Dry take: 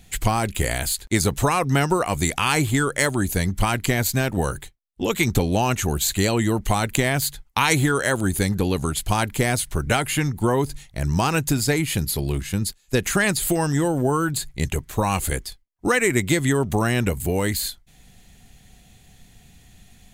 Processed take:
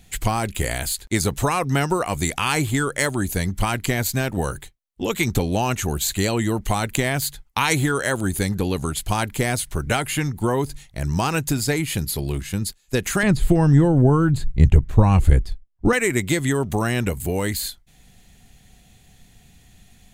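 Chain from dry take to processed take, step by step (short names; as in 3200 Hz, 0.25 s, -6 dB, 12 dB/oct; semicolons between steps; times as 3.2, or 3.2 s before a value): 13.23–15.93 RIAA curve playback; gain -1 dB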